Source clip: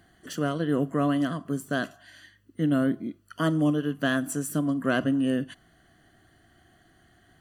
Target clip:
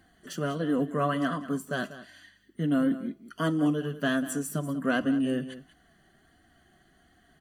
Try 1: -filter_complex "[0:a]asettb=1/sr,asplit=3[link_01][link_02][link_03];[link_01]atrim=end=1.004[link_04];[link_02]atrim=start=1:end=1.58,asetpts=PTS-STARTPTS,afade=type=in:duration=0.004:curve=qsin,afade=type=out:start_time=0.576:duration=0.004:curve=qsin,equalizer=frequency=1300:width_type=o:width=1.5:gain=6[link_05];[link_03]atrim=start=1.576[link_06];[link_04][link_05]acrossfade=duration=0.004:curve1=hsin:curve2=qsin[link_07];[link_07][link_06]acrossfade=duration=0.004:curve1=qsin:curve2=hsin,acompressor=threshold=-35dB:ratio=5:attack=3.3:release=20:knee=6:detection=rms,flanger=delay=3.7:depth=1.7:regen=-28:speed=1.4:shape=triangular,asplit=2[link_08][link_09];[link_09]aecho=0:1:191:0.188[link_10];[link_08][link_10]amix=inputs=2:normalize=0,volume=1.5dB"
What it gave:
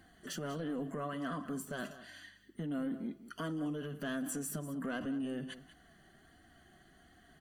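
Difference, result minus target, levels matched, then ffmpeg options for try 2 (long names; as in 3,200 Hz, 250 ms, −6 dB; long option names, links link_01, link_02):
downward compressor: peak gain reduction +14.5 dB
-filter_complex "[0:a]asettb=1/sr,asplit=3[link_01][link_02][link_03];[link_01]atrim=end=1.004[link_04];[link_02]atrim=start=1:end=1.58,asetpts=PTS-STARTPTS,afade=type=in:duration=0.004:curve=qsin,afade=type=out:start_time=0.576:duration=0.004:curve=qsin,equalizer=frequency=1300:width_type=o:width=1.5:gain=6[link_05];[link_03]atrim=start=1.576[link_06];[link_04][link_05]acrossfade=duration=0.004:curve1=hsin:curve2=qsin[link_07];[link_07][link_06]acrossfade=duration=0.004:curve1=qsin:curve2=hsin,flanger=delay=3.7:depth=1.7:regen=-28:speed=1.4:shape=triangular,asplit=2[link_08][link_09];[link_09]aecho=0:1:191:0.188[link_10];[link_08][link_10]amix=inputs=2:normalize=0,volume=1.5dB"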